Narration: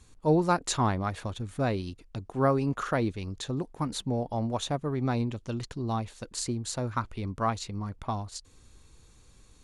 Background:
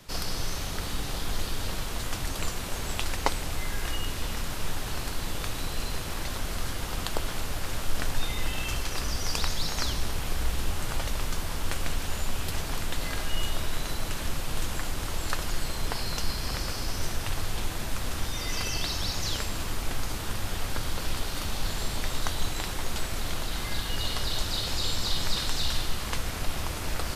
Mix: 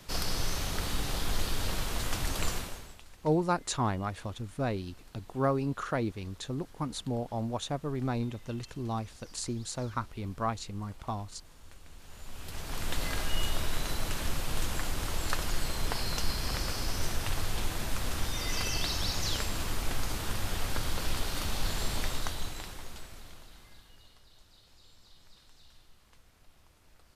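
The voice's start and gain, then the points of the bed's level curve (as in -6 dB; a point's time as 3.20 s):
3.00 s, -3.5 dB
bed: 2.56 s -0.5 dB
3.03 s -24 dB
11.87 s -24 dB
12.91 s -1.5 dB
22.01 s -1.5 dB
24.23 s -30.5 dB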